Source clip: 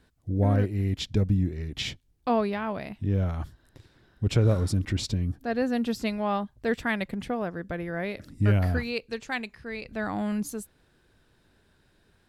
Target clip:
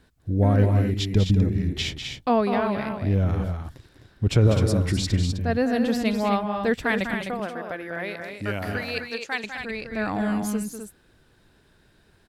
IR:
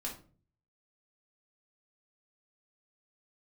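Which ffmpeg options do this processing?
-filter_complex "[0:a]asettb=1/sr,asplit=3[a][b][c];[a]atrim=end=7.214[d];[b]atrim=start=7.21:end=9.44,asetpts=PTS-STARTPTS,afade=t=in:d=0.004:c=qsin,afade=t=out:st=2.226:d=0.004:c=qsin,highpass=f=620:p=1[e];[c]atrim=start=9.436[f];[d][e]acrossfade=d=0.004:c1=hsin:c2=qsin[g];[g][f]acrossfade=d=0.004:c1=qsin:c2=hsin,aecho=1:1:198.3|256.6:0.398|0.447,volume=3.5dB"

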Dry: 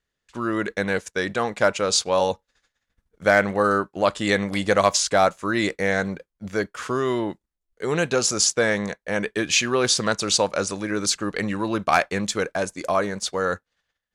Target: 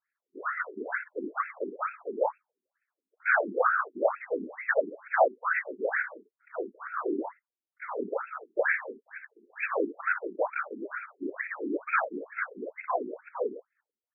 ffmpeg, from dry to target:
-filter_complex "[0:a]acrossover=split=590[a][b];[b]acontrast=37[c];[a][c]amix=inputs=2:normalize=0,asettb=1/sr,asplit=3[d][e][f];[d]atrim=end=8.974[g];[e]atrim=start=8.97:end=9.5,asetpts=PTS-STARTPTS,afade=t=in:d=0.004:c=qsin,afade=t=out:st=0.526:d=0.004:c=qsin,aderivative[h];[f]atrim=start=9.496[i];[g][h]acrossfade=d=0.004:c1=hsin:c2=qsin[j];[j][i]acrossfade=d=0.004:c1=qsin:c2=hsin,afftfilt=real='hypot(re,im)*cos(2*PI*random(0))':imag='hypot(re,im)*sin(2*PI*random(1))':win_size=512:overlap=0.75,aecho=1:1:32|58:0.15|0.299,afftfilt=real='re*between(b*sr/1024,290*pow(1900/290,0.5+0.5*sin(2*PI*2.2*pts/sr))/1.41,290*pow(1900/290,0.5+0.5*sin(2*PI*2.2*pts/sr))*1.41)':imag='im*between(b*sr/1024,290*pow(1900/290,0.5+0.5*sin(2*PI*2.2*pts/sr))/1.41,290*pow(1900/290,0.5+0.5*sin(2*PI*2.2*pts/sr))*1.41)':win_size=1024:overlap=0.75"

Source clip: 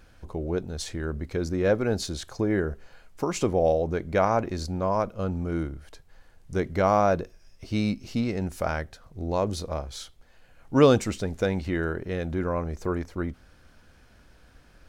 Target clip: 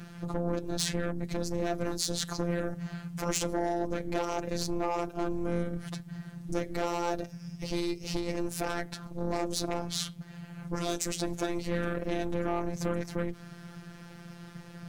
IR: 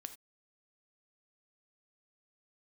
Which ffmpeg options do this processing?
-filter_complex "[0:a]asettb=1/sr,asplit=3[a][b][c];[a]atrim=end=1.114[d];[b]atrim=start=1.11:end=2.01,asetpts=PTS-STARTPTS,afade=t=in:d=0.004:c=qsin,afade=t=out:st=0.896:d=0.004:c=qsin,lowshelf=f=140:g=9.5[e];[c]atrim=start=2.006[f];[d][e]acrossfade=d=0.004:c1=hsin:c2=qsin[g];[g][f]acrossfade=d=0.004:c1=qsin:c2=hsin,acrossover=split=4900[h][i];[h]acompressor=threshold=-31dB:ratio=16[j];[j][i]amix=inputs=2:normalize=0,aeval=exprs='0.0944*sin(PI/2*2.51*val(0)/0.0944)':c=same,aeval=exprs='val(0)*sin(2*PI*150*n/s)':c=same,afftfilt=real='hypot(re,im)*cos(PI*b)':imag='0':win_size=1024:overlap=0.75,volume=1.5dB"

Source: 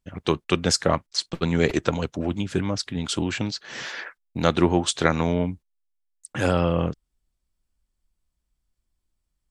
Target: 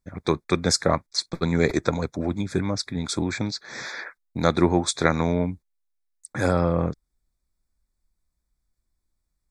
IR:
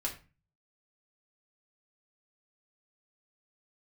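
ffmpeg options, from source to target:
-af "asuperstop=centerf=2900:order=8:qfactor=3"

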